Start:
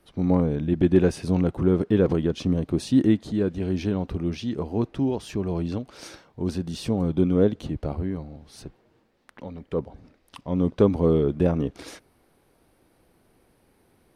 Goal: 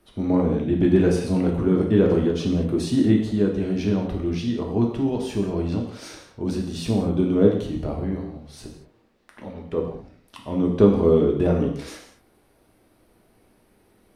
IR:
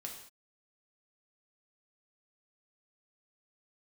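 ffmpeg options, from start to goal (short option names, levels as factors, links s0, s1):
-filter_complex "[1:a]atrim=start_sample=2205[s0];[0:a][s0]afir=irnorm=-1:irlink=0,volume=1.78"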